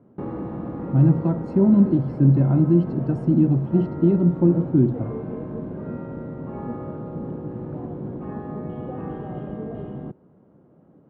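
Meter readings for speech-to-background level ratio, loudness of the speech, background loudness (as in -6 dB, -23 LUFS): 13.0 dB, -19.5 LUFS, -32.5 LUFS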